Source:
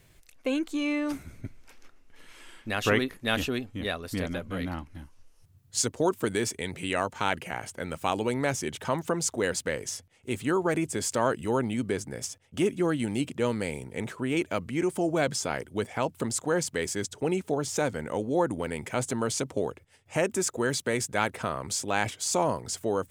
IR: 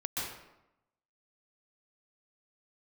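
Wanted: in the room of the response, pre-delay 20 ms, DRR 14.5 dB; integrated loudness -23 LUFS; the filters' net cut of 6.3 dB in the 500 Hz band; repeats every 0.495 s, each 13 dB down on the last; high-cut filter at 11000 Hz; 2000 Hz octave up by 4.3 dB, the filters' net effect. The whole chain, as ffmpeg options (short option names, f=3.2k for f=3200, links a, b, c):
-filter_complex "[0:a]lowpass=11k,equalizer=f=500:t=o:g=-8.5,equalizer=f=2k:t=o:g=6,aecho=1:1:495|990|1485:0.224|0.0493|0.0108,asplit=2[a][b];[1:a]atrim=start_sample=2205,adelay=20[c];[b][c]afir=irnorm=-1:irlink=0,volume=-19dB[d];[a][d]amix=inputs=2:normalize=0,volume=7dB"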